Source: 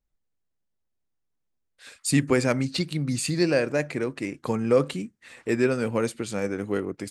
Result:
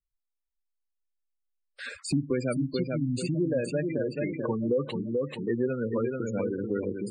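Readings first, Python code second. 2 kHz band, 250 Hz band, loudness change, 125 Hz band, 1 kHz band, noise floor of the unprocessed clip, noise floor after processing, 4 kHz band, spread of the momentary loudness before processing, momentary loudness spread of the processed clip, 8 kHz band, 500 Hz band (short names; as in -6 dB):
-8.5 dB, -2.5 dB, -4.0 dB, -3.0 dB, -8.0 dB, -77 dBFS, -84 dBFS, -9.0 dB, 9 LU, 3 LU, -11.0 dB, -3.5 dB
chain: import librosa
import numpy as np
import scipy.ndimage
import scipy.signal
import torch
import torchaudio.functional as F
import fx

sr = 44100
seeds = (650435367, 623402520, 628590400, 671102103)

y = fx.noise_reduce_blind(x, sr, reduce_db=24)
y = fx.echo_feedback(y, sr, ms=435, feedback_pct=36, wet_db=-5.5)
y = fx.spec_gate(y, sr, threshold_db=-15, keep='strong')
y = fx.band_squash(y, sr, depth_pct=70)
y = F.gain(torch.from_numpy(y), -4.5).numpy()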